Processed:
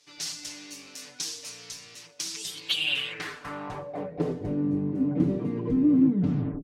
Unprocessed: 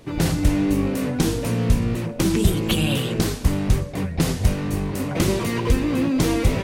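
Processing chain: tape stop on the ending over 0.61 s; comb 6.8 ms, depth 95%; band-pass sweep 5.5 kHz -> 250 Hz, 2.45–4.68 s

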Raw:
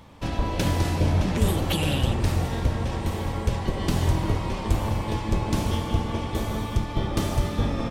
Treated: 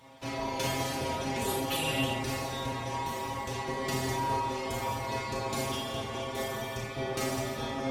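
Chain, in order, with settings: reverse; upward compressor, threshold -34 dBFS; reverse; high-pass 50 Hz; tone controls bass -9 dB, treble +1 dB; inharmonic resonator 130 Hz, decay 0.22 s, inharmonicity 0.002; Schroeder reverb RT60 0.31 s, combs from 26 ms, DRR 0 dB; trim +4.5 dB

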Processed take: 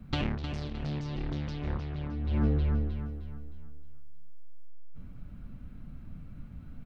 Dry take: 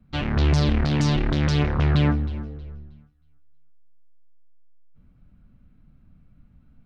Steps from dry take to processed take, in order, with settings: dynamic bell 1.5 kHz, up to -4 dB, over -45 dBFS, Q 1.2; compressor with a negative ratio -32 dBFS, ratio -1; 0.70–2.75 s: distance through air 110 m; feedback delay 309 ms, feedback 40%, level -9.5 dB

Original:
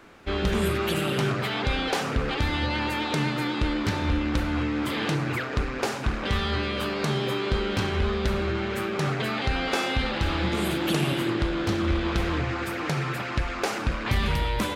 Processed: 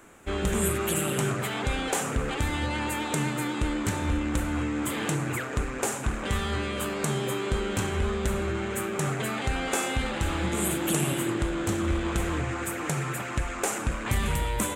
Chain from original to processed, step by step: resonant high shelf 6.1 kHz +8.5 dB, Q 3; trim -2 dB

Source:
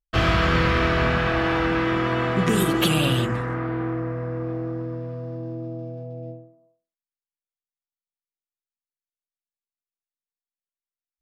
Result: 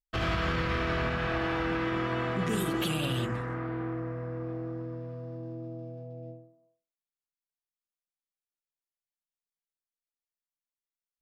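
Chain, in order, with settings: peak limiter -13 dBFS, peak gain reduction 5.5 dB; trim -7.5 dB

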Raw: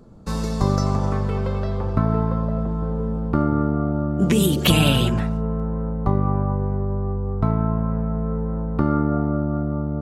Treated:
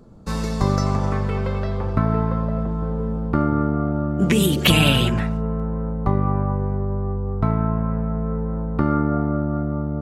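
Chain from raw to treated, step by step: dynamic bell 2.1 kHz, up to +6 dB, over -45 dBFS, Q 1.4

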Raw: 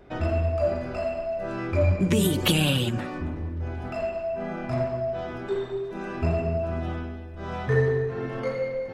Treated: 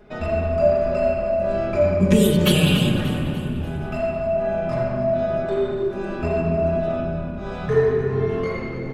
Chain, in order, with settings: comb 4.8 ms, depth 71%; frequency-shifting echo 293 ms, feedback 51%, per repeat -35 Hz, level -13 dB; on a send at -1.5 dB: reverberation RT60 1.9 s, pre-delay 8 ms

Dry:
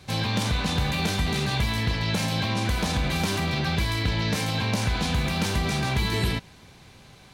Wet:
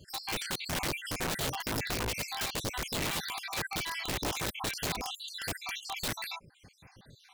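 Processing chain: random holes in the spectrogram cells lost 66%; reverb removal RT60 0.69 s; integer overflow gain 25 dB; trim -2.5 dB

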